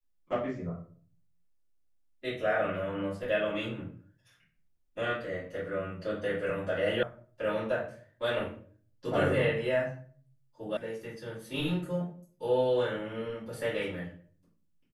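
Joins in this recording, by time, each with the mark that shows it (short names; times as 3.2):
7.03 sound cut off
10.77 sound cut off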